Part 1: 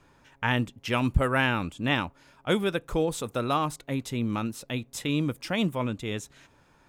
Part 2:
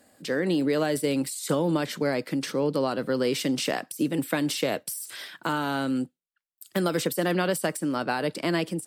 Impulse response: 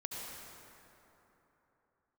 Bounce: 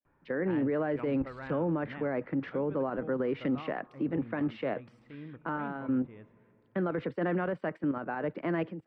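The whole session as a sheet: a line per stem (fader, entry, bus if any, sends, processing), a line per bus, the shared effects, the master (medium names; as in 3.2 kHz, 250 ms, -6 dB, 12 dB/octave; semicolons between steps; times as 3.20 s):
-9.5 dB, 0.05 s, send -21 dB, auto duck -10 dB, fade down 1.40 s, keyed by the second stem
+3.0 dB, 0.00 s, no send, level held to a coarse grid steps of 9 dB; three bands expanded up and down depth 100%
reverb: on, RT60 3.4 s, pre-delay 63 ms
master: low-pass 2 kHz 24 dB/octave; peak limiter -23 dBFS, peak gain reduction 11 dB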